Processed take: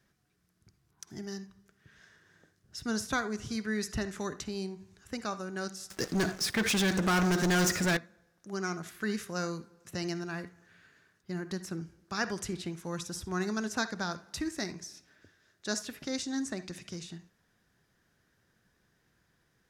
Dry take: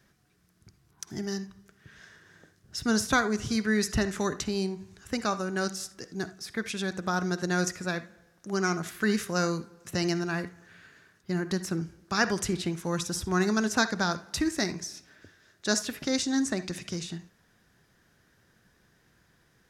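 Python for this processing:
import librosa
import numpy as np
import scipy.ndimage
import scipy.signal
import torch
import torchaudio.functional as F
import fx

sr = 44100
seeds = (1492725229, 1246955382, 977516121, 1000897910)

y = fx.leveller(x, sr, passes=5, at=(5.9, 7.97))
y = y * librosa.db_to_amplitude(-7.0)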